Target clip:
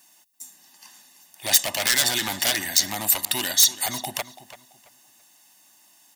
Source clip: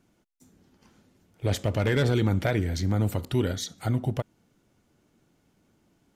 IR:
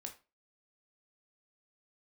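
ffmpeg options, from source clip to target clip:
-filter_complex "[0:a]highpass=510,aecho=1:1:1.1:0.89,aeval=exprs='0.0473*(abs(mod(val(0)/0.0473+3,4)-2)-1)':c=same,crystalizer=i=7:c=0,asplit=2[a][b];[b]adelay=335,lowpass=f=4k:p=1,volume=-14dB,asplit=2[c][d];[d]adelay=335,lowpass=f=4k:p=1,volume=0.28,asplit=2[e][f];[f]adelay=335,lowpass=f=4k:p=1,volume=0.28[g];[c][e][g]amix=inputs=3:normalize=0[h];[a][h]amix=inputs=2:normalize=0,volume=2.5dB"

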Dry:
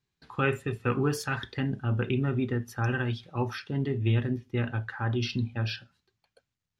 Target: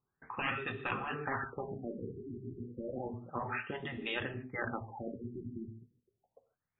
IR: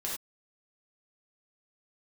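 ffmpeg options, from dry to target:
-filter_complex "[0:a]asplit=2[a][b];[b]highpass=f=720:p=1,volume=9dB,asoftclip=type=tanh:threshold=-12dB[c];[a][c]amix=inputs=2:normalize=0,lowpass=f=3.9k:p=1,volume=-6dB,asplit=2[d][e];[1:a]atrim=start_sample=2205,asetrate=29988,aresample=44100[f];[e][f]afir=irnorm=-1:irlink=0,volume=-16dB[g];[d][g]amix=inputs=2:normalize=0,afftfilt=real='re*lt(hypot(re,im),0.158)':imag='im*lt(hypot(re,im),0.158)':win_size=1024:overlap=0.75,afftfilt=real='re*lt(b*sr/1024,400*pow(4000/400,0.5+0.5*sin(2*PI*0.31*pts/sr)))':imag='im*lt(b*sr/1024,400*pow(4000/400,0.5+0.5*sin(2*PI*0.31*pts/sr)))':win_size=1024:overlap=0.75,volume=-2dB"

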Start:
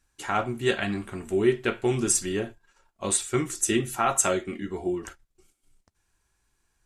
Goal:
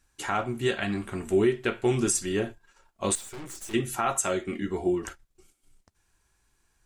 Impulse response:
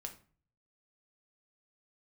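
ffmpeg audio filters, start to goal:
-filter_complex "[0:a]alimiter=limit=-16.5dB:level=0:latency=1:release=374,asettb=1/sr,asplit=3[a][b][c];[a]atrim=end=3.154[d];[b]atrim=start=3.15:end=3.74,asetpts=PTS-STARTPTS,afade=t=in:d=0.004:c=qsin,afade=t=out:st=0.586:d=0.004:c=qsin,aeval=exprs='(tanh(112*val(0)+0.7)-tanh(0.7))/112':c=same[e];[c]atrim=start=3.736[f];[d][e]acrossfade=d=0.004:c1=hsin:c2=qsin[g];[g][f]acrossfade=d=0.004:c1=qsin:c2=hsin,volume=2.5dB"

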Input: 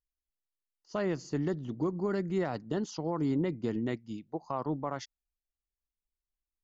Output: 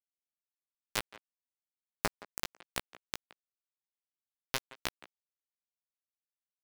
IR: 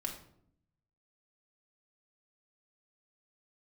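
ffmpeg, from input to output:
-filter_complex "[0:a]equalizer=f=125:t=o:w=1:g=-7,equalizer=f=250:t=o:w=1:g=-7,equalizer=f=500:t=o:w=1:g=5,equalizer=f=2k:t=o:w=1:g=-9,aeval=exprs='sgn(val(0))*max(abs(val(0))-0.00106,0)':c=same,acrusher=bits=3:mix=0:aa=0.000001,asplit=2[a][b];[b]adelay=17,volume=-7dB[c];[a][c]amix=inputs=2:normalize=0,asplit=2[d][e];[e]adelay=170,highpass=300,lowpass=3.4k,asoftclip=type=hard:threshold=-26dB,volume=-15dB[f];[d][f]amix=inputs=2:normalize=0,volume=5dB"

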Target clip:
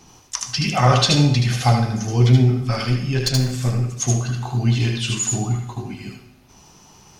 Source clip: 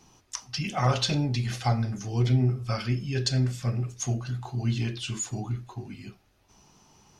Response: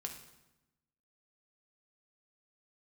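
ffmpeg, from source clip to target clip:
-filter_complex "[0:a]asettb=1/sr,asplit=3[a][b][c];[a]atrim=end=2.614[d];[b]atrim=start=2.61:end=3.89,asetpts=PTS-STARTPTS,afade=t=in:d=0.004:c=qsin,afade=t=out:st=1.276:d=0.004:c=qsin,aeval=exprs='(tanh(10*val(0)+0.35)-tanh(0.35))/10':c=same[e];[c]atrim=start=3.886[f];[d][e]acrossfade=d=0.004:c1=hsin:c2=qsin[g];[g][f]acrossfade=d=0.004:c1=qsin:c2=hsin,asplit=2[h][i];[i]highshelf=f=7.9k:g=8[j];[1:a]atrim=start_sample=2205,lowshelf=f=390:g=-6,adelay=76[k];[j][k]afir=irnorm=-1:irlink=0,volume=-1.5dB[l];[h][l]amix=inputs=2:normalize=0,volume=8.5dB"

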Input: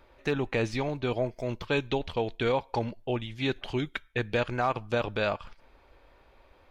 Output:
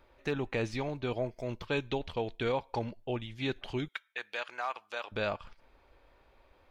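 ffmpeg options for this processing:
-filter_complex "[0:a]asettb=1/sr,asplit=3[a][b][c];[a]atrim=end=3.884[d];[b]atrim=start=3.88:end=5.12,asetpts=PTS-STARTPTS,afade=t=in:d=0.004:c=qsin,afade=t=out:st=1.236:d=0.004:c=qsin,highpass=890[e];[c]atrim=start=5.116[f];[d][e]acrossfade=d=0.004:c1=hsin:c2=qsin[g];[g][f]acrossfade=d=0.004:c1=qsin:c2=hsin,volume=-4.5dB"

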